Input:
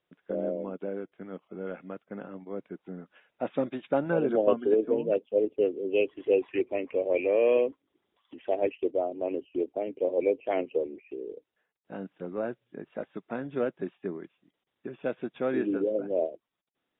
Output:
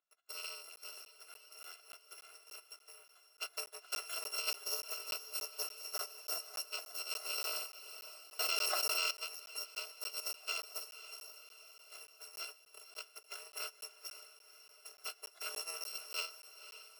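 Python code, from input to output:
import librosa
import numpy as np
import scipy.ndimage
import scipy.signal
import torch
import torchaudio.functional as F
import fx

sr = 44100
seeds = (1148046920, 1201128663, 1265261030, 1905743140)

y = fx.bit_reversed(x, sr, seeds[0], block=256)
y = fx.lowpass(y, sr, hz=1100.0, slope=6)
y = fx.chorus_voices(y, sr, voices=6, hz=1.1, base_ms=15, depth_ms=3.4, mix_pct=20)
y = fx.brickwall_highpass(y, sr, low_hz=330.0)
y = fx.transient(y, sr, attack_db=3, sustain_db=-2)
y = fx.echo_diffused(y, sr, ms=533, feedback_pct=58, wet_db=-12.5)
y = fx.buffer_crackle(y, sr, first_s=0.76, period_s=0.29, block=512, kind='zero')
y = fx.env_flatten(y, sr, amount_pct=100, at=(8.39, 9.11))
y = y * librosa.db_to_amplitude(2.0)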